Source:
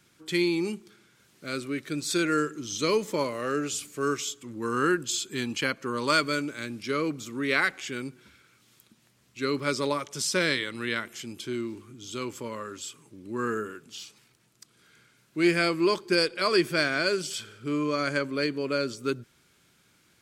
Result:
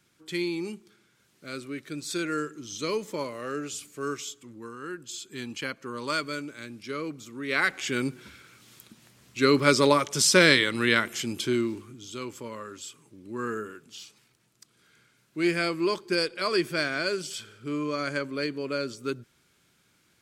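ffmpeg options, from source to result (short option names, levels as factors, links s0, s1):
-af "volume=8.91,afade=t=out:st=4.41:d=0.37:silence=0.266073,afade=t=in:st=4.78:d=0.68:silence=0.298538,afade=t=in:st=7.46:d=0.61:silence=0.223872,afade=t=out:st=11.43:d=0.67:silence=0.316228"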